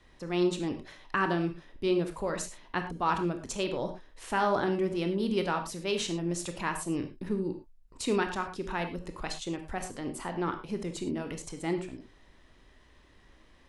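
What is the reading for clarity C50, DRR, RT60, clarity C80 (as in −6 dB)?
9.0 dB, 6.0 dB, non-exponential decay, 12.5 dB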